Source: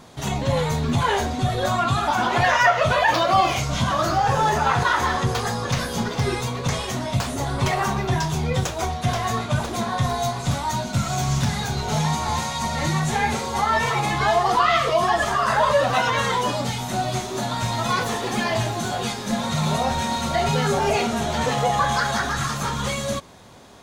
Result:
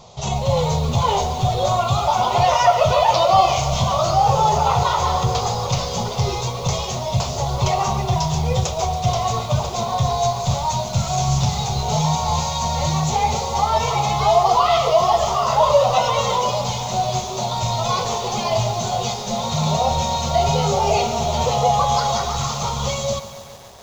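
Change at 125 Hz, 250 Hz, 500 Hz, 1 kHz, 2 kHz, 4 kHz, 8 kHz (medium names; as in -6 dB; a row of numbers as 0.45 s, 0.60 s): +3.0 dB, -1.5 dB, +4.5 dB, +3.5 dB, -7.5 dB, +3.0 dB, +4.0 dB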